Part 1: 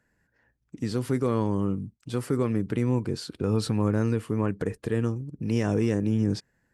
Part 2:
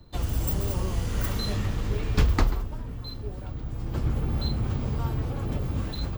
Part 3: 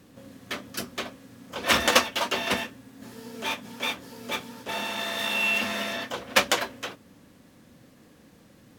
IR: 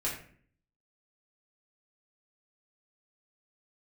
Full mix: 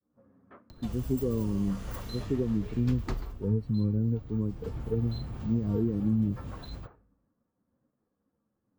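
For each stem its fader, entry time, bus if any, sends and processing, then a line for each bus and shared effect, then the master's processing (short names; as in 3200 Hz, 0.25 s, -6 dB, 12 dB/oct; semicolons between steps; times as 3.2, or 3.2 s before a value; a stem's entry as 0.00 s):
+1.0 dB, 0.00 s, no send, spectral expander 2.5:1
-11.5 dB, 0.70 s, send -21 dB, upward compressor, threshold -30 dBFS
-11.0 dB, 0.00 s, send -21.5 dB, Chebyshev low-pass 1300 Hz, order 3; expander -47 dBFS; ensemble effect; auto duck -13 dB, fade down 0.30 s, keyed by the first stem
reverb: on, RT60 0.50 s, pre-delay 4 ms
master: compressor 3:1, threshold -24 dBFS, peak gain reduction 6 dB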